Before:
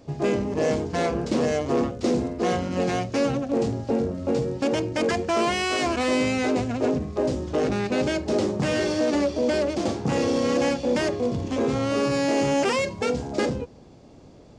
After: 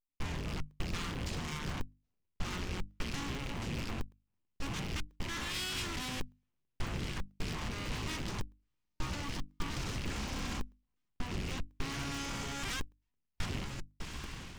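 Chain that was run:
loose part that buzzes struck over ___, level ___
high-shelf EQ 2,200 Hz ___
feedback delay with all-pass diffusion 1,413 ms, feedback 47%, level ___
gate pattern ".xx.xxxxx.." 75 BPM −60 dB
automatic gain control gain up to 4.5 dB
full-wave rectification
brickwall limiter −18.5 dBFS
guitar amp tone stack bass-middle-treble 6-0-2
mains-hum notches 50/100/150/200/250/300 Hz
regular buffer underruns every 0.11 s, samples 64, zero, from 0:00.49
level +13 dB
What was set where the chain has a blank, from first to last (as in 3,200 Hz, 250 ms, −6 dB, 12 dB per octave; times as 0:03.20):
−36 dBFS, −26 dBFS, −5 dB, −14 dB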